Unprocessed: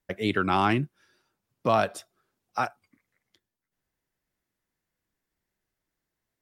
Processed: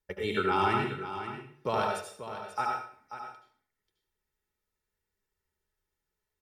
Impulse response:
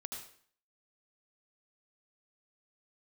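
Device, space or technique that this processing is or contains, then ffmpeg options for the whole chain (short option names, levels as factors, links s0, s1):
microphone above a desk: -filter_complex "[0:a]aecho=1:1:2.2:0.59[s0];[1:a]atrim=start_sample=2205[s1];[s0][s1]afir=irnorm=-1:irlink=0,equalizer=f=76:w=2:g=5,aecho=1:1:4.7:0.41,aecho=1:1:537:0.282,volume=0.708"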